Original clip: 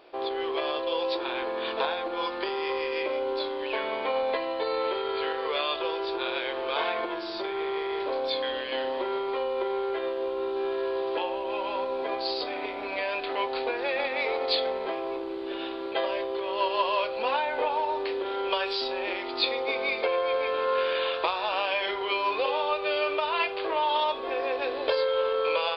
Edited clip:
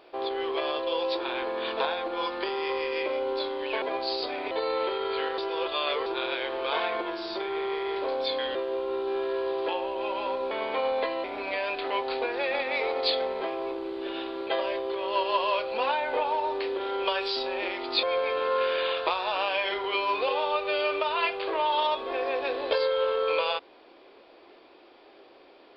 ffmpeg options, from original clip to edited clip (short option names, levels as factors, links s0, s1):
-filter_complex "[0:a]asplit=9[s0][s1][s2][s3][s4][s5][s6][s7][s8];[s0]atrim=end=3.822[s9];[s1]atrim=start=11.998:end=12.692[s10];[s2]atrim=start=4.548:end=5.422[s11];[s3]atrim=start=5.418:end=6.102,asetpts=PTS-STARTPTS,areverse[s12];[s4]atrim=start=6.098:end=8.592[s13];[s5]atrim=start=10.038:end=12.002[s14];[s6]atrim=start=3.818:end=4.552[s15];[s7]atrim=start=12.688:end=19.482[s16];[s8]atrim=start=20.198[s17];[s9][s10]acrossfade=d=0.004:c1=hsin:c2=hsin[s18];[s18][s11]acrossfade=d=0.004:c1=hsin:c2=hsin[s19];[s19][s12]acrossfade=d=0.004:c1=hsin:c2=hsin[s20];[s20][s13]acrossfade=d=0.004:c1=hsin:c2=hsin[s21];[s21][s14]acrossfade=d=0.004:c1=hsin:c2=hsin[s22];[s22][s15]acrossfade=d=0.004:c1=hsin:c2=hsin[s23];[s23][s16]acrossfade=d=0.004:c1=hsin:c2=hsin[s24];[s24][s17]acrossfade=d=0.004:c1=hsin:c2=hsin"